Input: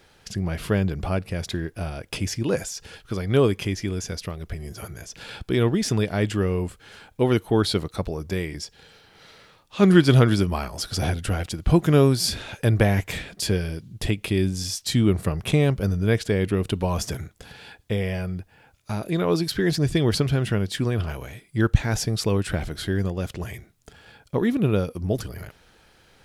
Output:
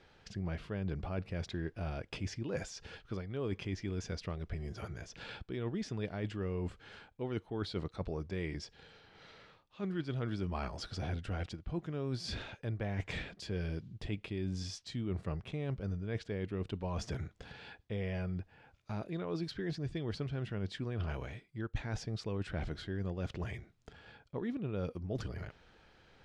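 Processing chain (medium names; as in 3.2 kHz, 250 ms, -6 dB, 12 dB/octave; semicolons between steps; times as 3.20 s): reverse; compression 10:1, threshold -28 dBFS, peak gain reduction 19 dB; reverse; distance through air 130 m; trim -5.5 dB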